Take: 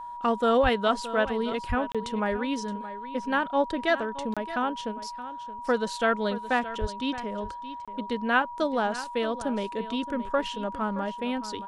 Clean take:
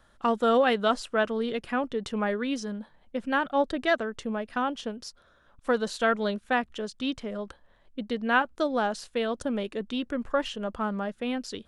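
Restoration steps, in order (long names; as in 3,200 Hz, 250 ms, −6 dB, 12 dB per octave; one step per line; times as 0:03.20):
notch filter 960 Hz, Q 30
0:00.62–0:00.74: high-pass filter 140 Hz 24 dB per octave
0:01.68–0:01.80: high-pass filter 140 Hz 24 dB per octave
0:06.80–0:06.92: high-pass filter 140 Hz 24 dB per octave
repair the gap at 0:01.92/0:04.34/0:07.85, 26 ms
echo removal 621 ms −14 dB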